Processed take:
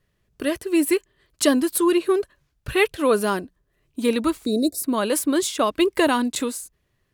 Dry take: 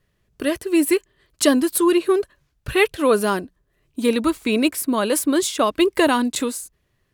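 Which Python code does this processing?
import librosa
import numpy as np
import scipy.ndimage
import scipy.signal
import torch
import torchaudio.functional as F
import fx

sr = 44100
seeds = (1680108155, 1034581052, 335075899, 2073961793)

y = fx.spec_box(x, sr, start_s=4.45, length_s=0.39, low_hz=720.0, high_hz=3600.0, gain_db=-29)
y = y * librosa.db_to_amplitude(-2.0)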